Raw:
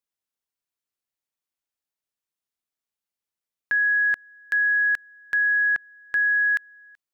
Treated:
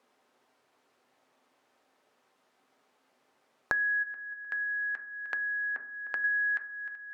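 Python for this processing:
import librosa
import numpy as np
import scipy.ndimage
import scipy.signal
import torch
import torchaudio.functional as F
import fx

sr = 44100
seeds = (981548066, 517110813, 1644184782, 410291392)

y = fx.level_steps(x, sr, step_db=20, at=(4.02, 6.24), fade=0.02)
y = fx.bandpass_q(y, sr, hz=600.0, q=0.72)
y = fx.echo_feedback(y, sr, ms=306, feedback_pct=26, wet_db=-21.0)
y = fx.rev_fdn(y, sr, rt60_s=0.44, lf_ratio=1.45, hf_ratio=0.3, size_ms=23.0, drr_db=5.5)
y = fx.band_squash(y, sr, depth_pct=100)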